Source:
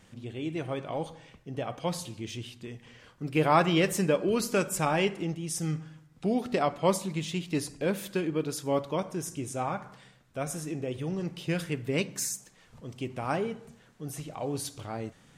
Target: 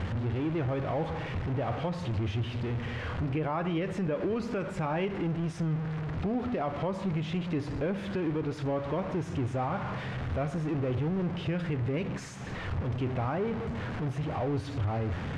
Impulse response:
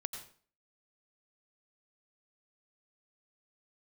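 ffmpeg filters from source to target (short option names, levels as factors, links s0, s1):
-filter_complex "[0:a]aeval=exprs='val(0)+0.5*0.0316*sgn(val(0))':c=same,lowpass=2100,equalizer=f=85:w=2.1:g=14,asplit=2[s0][s1];[s1]acompressor=threshold=0.0251:ratio=6,volume=0.75[s2];[s0][s2]amix=inputs=2:normalize=0,alimiter=limit=0.119:level=0:latency=1:release=95,areverse,acompressor=mode=upward:threshold=0.02:ratio=2.5,areverse,volume=0.596"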